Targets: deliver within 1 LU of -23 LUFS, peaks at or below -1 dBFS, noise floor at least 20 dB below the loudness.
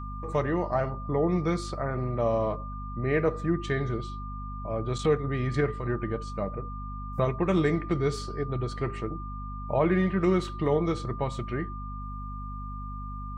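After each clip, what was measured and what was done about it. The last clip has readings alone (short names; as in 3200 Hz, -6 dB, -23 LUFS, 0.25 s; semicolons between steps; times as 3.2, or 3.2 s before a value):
hum 50 Hz; harmonics up to 250 Hz; hum level -35 dBFS; steady tone 1200 Hz; tone level -40 dBFS; loudness -29.5 LUFS; peak -13.0 dBFS; loudness target -23.0 LUFS
-> de-hum 50 Hz, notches 5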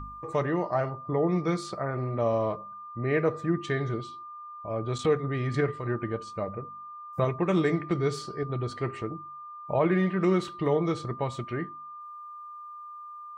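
hum none; steady tone 1200 Hz; tone level -40 dBFS
-> notch 1200 Hz, Q 30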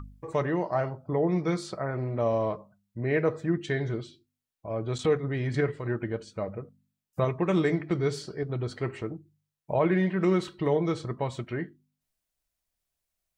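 steady tone none; loudness -29.0 LUFS; peak -13.5 dBFS; loudness target -23.0 LUFS
-> gain +6 dB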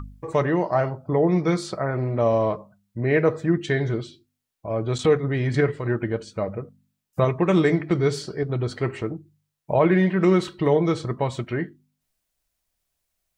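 loudness -23.0 LUFS; peak -7.5 dBFS; noise floor -79 dBFS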